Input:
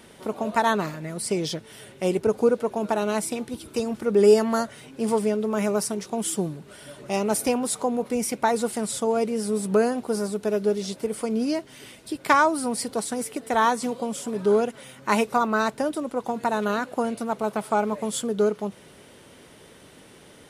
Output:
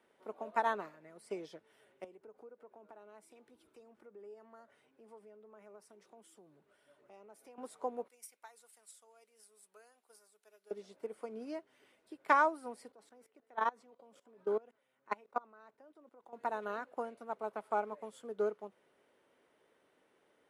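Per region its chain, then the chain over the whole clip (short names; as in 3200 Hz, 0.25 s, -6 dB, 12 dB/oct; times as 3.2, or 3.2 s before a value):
2.04–7.58 compressor 5:1, threshold -33 dBFS + three-band expander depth 40%
8.08–10.71 differentiator + transient shaper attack +7 dB, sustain +1 dB
12.92–16.33 dynamic EQ 9500 Hz, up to -7 dB, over -50 dBFS, Q 1.2 + level quantiser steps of 19 dB
whole clip: three-band isolator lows -17 dB, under 300 Hz, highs -12 dB, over 2400 Hz; upward expander 1.5:1, over -38 dBFS; gain -7.5 dB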